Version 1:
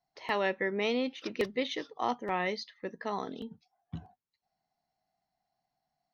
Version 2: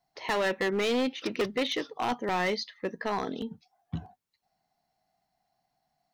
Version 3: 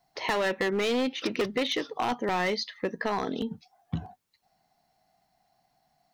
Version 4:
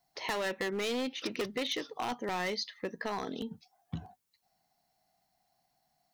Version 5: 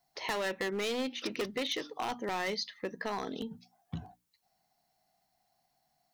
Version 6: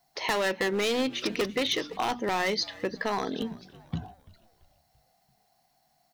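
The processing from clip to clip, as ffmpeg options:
-af "volume=29.5dB,asoftclip=hard,volume=-29.5dB,volume=6dB"
-af "acompressor=threshold=-35dB:ratio=2.5,volume=7dB"
-af "highshelf=f=5k:g=8.5,volume=-7dB"
-af "bandreject=f=60:t=h:w=6,bandreject=f=120:t=h:w=6,bandreject=f=180:t=h:w=6,bandreject=f=240:t=h:w=6,bandreject=f=300:t=h:w=6"
-filter_complex "[0:a]asplit=5[a][b][c][d][e];[b]adelay=337,afreqshift=-75,volume=-21dB[f];[c]adelay=674,afreqshift=-150,volume=-27.2dB[g];[d]adelay=1011,afreqshift=-225,volume=-33.4dB[h];[e]adelay=1348,afreqshift=-300,volume=-39.6dB[i];[a][f][g][h][i]amix=inputs=5:normalize=0,volume=6.5dB"

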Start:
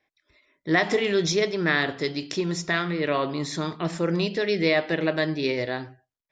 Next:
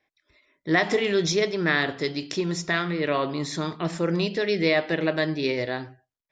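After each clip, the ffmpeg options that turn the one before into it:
-af anull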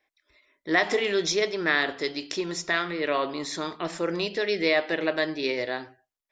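-af "equalizer=f=140:t=o:w=1.3:g=-14"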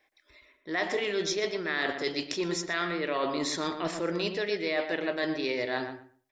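-filter_complex "[0:a]areverse,acompressor=threshold=-32dB:ratio=6,areverse,asplit=2[a][b];[b]adelay=119,lowpass=f=1.8k:p=1,volume=-7dB,asplit=2[c][d];[d]adelay=119,lowpass=f=1.8k:p=1,volume=0.2,asplit=2[e][f];[f]adelay=119,lowpass=f=1.8k:p=1,volume=0.2[g];[a][c][e][g]amix=inputs=4:normalize=0,volume=4.5dB"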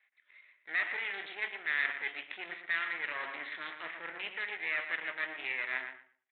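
-af "aresample=8000,aeval=exprs='max(val(0),0)':c=same,aresample=44100,bandpass=f=2k:t=q:w=3.1:csg=0,volume=7dB"

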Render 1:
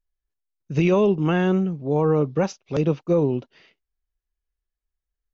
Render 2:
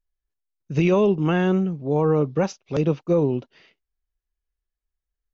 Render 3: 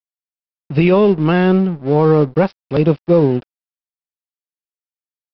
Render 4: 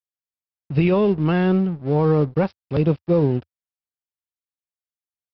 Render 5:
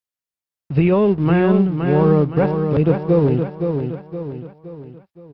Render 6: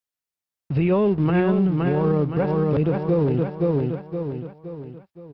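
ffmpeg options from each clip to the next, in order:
-af anull
-af "dynaudnorm=f=210:g=3:m=8dB,aresample=11025,aeval=exprs='sgn(val(0))*max(abs(val(0))-0.0211,0)':c=same,aresample=44100,volume=1.5dB"
-af "equalizer=f=84:t=o:w=1.1:g=12.5,volume=-7dB"
-filter_complex "[0:a]acrossover=split=2900[a][b];[b]acompressor=threshold=-54dB:ratio=4:attack=1:release=60[c];[a][c]amix=inputs=2:normalize=0,asplit=2[d][e];[e]aecho=0:1:518|1036|1554|2072|2590:0.501|0.226|0.101|0.0457|0.0206[f];[d][f]amix=inputs=2:normalize=0,volume=2.5dB"
-af "alimiter=limit=-12dB:level=0:latency=1:release=66"

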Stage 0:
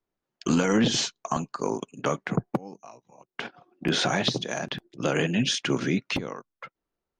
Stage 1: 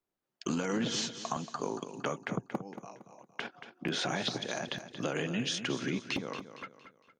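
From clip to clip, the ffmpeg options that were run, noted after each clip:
-filter_complex "[0:a]lowshelf=f=62:g=-11,acompressor=threshold=-29dB:ratio=2.5,asplit=2[a][b];[b]aecho=0:1:230|460|690|920:0.282|0.11|0.0429|0.0167[c];[a][c]amix=inputs=2:normalize=0,volume=-3dB"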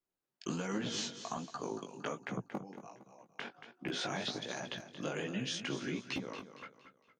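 -af "flanger=delay=15:depth=6.1:speed=1.3,volume=-1.5dB"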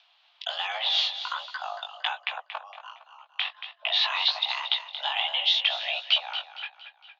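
-af "acompressor=mode=upward:threshold=-55dB:ratio=2.5,aexciter=amount=3.4:drive=8.8:freq=2.3k,highpass=f=410:t=q:w=0.5412,highpass=f=410:t=q:w=1.307,lowpass=f=3.3k:t=q:w=0.5176,lowpass=f=3.3k:t=q:w=0.7071,lowpass=f=3.3k:t=q:w=1.932,afreqshift=320,volume=8dB"

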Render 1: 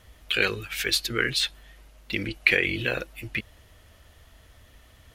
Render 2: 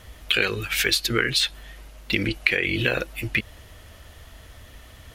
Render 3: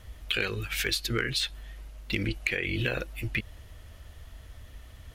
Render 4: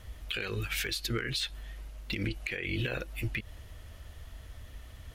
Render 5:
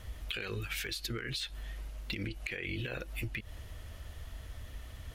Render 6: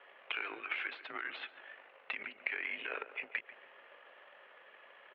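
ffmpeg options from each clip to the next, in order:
-af "acompressor=threshold=-26dB:ratio=5,volume=8dB"
-af "asoftclip=type=hard:threshold=-7.5dB,lowshelf=f=120:g=9.5,volume=-7.5dB"
-af "alimiter=limit=-22.5dB:level=0:latency=1:release=114"
-af "acompressor=threshold=-36dB:ratio=5,volume=1.5dB"
-filter_complex "[0:a]aeval=exprs='0.0891*(cos(1*acos(clip(val(0)/0.0891,-1,1)))-cos(1*PI/2))+0.0398*(cos(2*acos(clip(val(0)/0.0891,-1,1)))-cos(2*PI/2))+0.00447*(cos(7*acos(clip(val(0)/0.0891,-1,1)))-cos(7*PI/2))':c=same,asplit=2[a][b];[b]adelay=141,lowpass=f=1.5k:p=1,volume=-12dB,asplit=2[c][d];[d]adelay=141,lowpass=f=1.5k:p=1,volume=0.54,asplit=2[e][f];[f]adelay=141,lowpass=f=1.5k:p=1,volume=0.54,asplit=2[g][h];[h]adelay=141,lowpass=f=1.5k:p=1,volume=0.54,asplit=2[i][j];[j]adelay=141,lowpass=f=1.5k:p=1,volume=0.54,asplit=2[k][l];[l]adelay=141,lowpass=f=1.5k:p=1,volume=0.54[m];[a][c][e][g][i][k][m]amix=inputs=7:normalize=0,highpass=f=590:t=q:w=0.5412,highpass=f=590:t=q:w=1.307,lowpass=f=2.8k:t=q:w=0.5176,lowpass=f=2.8k:t=q:w=0.7071,lowpass=f=2.8k:t=q:w=1.932,afreqshift=-82,volume=4.5dB"

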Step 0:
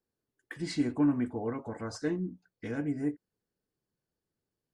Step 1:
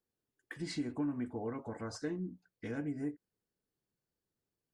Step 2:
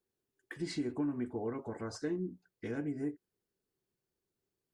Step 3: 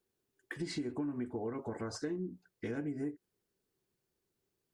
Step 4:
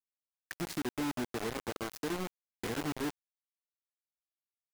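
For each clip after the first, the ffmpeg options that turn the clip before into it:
-af "acompressor=threshold=-32dB:ratio=2.5,volume=-3dB"
-af "equalizer=f=380:w=5.9:g=9"
-af "acompressor=threshold=-39dB:ratio=3,volume=3.5dB"
-af "acrusher=bits=5:mix=0:aa=0.000001"

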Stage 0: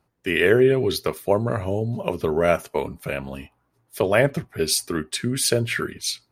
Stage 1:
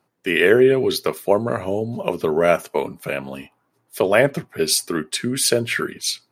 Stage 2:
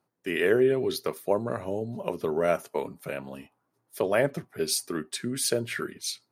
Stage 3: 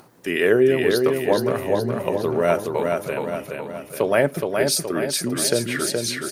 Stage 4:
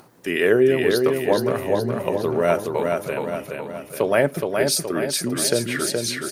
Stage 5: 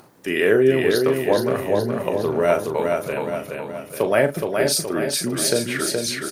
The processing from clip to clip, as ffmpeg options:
-af "highpass=170,volume=3dB"
-af "equalizer=f=2.6k:w=1.1:g=-4,volume=-8dB"
-filter_complex "[0:a]acompressor=mode=upward:threshold=-40dB:ratio=2.5,asplit=2[a][b];[b]aecho=0:1:421|842|1263|1684|2105|2526|2947:0.631|0.322|0.164|0.0837|0.0427|0.0218|0.0111[c];[a][c]amix=inputs=2:normalize=0,volume=5.5dB"
-af anull
-filter_complex "[0:a]asplit=2[a][b];[b]adelay=38,volume=-8dB[c];[a][c]amix=inputs=2:normalize=0"

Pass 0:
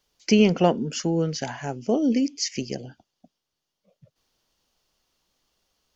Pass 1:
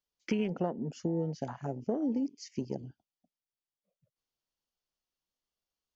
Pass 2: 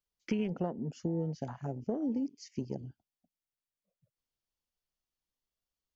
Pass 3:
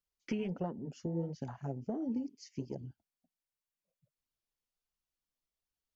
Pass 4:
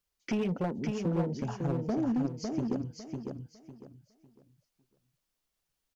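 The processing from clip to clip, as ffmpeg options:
-af "afwtdn=0.0355,acompressor=threshold=-24dB:ratio=6,volume=-4dB"
-af "lowshelf=f=130:g=9,volume=-3.5dB"
-af "flanger=delay=0.7:depth=7.2:regen=-31:speed=1.4:shape=sinusoidal,volume=1dB"
-filter_complex "[0:a]asoftclip=type=hard:threshold=-32.5dB,asplit=2[a][b];[b]aecho=0:1:553|1106|1659|2212:0.596|0.161|0.0434|0.0117[c];[a][c]amix=inputs=2:normalize=0,volume=7dB"

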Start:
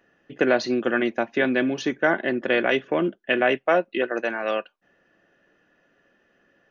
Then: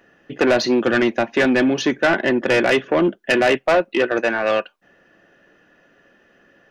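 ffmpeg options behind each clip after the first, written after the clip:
-af "asoftclip=type=tanh:threshold=-18.5dB,volume=8.5dB"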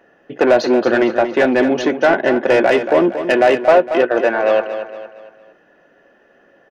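-filter_complex "[0:a]equalizer=f=660:t=o:w=2.4:g=10.5,bandreject=f=1.2k:w=26,asplit=2[a][b];[b]aecho=0:1:230|460|690|920:0.316|0.133|0.0558|0.0234[c];[a][c]amix=inputs=2:normalize=0,volume=-4.5dB"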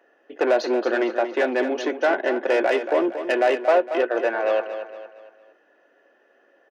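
-af "highpass=f=290:w=0.5412,highpass=f=290:w=1.3066,volume=-7dB"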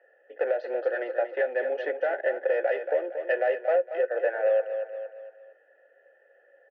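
-filter_complex "[0:a]asplit=3[a][b][c];[a]bandpass=f=530:t=q:w=8,volume=0dB[d];[b]bandpass=f=1.84k:t=q:w=8,volume=-6dB[e];[c]bandpass=f=2.48k:t=q:w=8,volume=-9dB[f];[d][e][f]amix=inputs=3:normalize=0,alimiter=limit=-21.5dB:level=0:latency=1:release=467,highpass=f=340:w=0.5412,highpass=f=340:w=1.3066,equalizer=f=370:t=q:w=4:g=-5,equalizer=f=560:t=q:w=4:g=-3,equalizer=f=810:t=q:w=4:g=8,equalizer=f=1.3k:t=q:w=4:g=9,equalizer=f=2.6k:t=q:w=4:g=-8,equalizer=f=3.9k:t=q:w=4:g=-6,lowpass=f=4.8k:w=0.5412,lowpass=f=4.8k:w=1.3066,volume=7.5dB"

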